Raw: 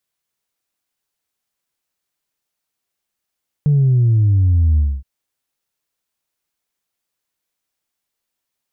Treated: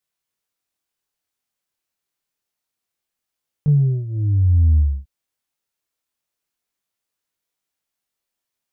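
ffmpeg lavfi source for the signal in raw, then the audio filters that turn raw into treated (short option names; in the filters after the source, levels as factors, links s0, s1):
-f lavfi -i "aevalsrc='0.299*clip((1.37-t)/0.25,0,1)*tanh(1*sin(2*PI*150*1.37/log(65/150)*(exp(log(65/150)*t/1.37)-1)))/tanh(1)':d=1.37:s=44100"
-af "flanger=delay=20:depth=6.9:speed=0.28"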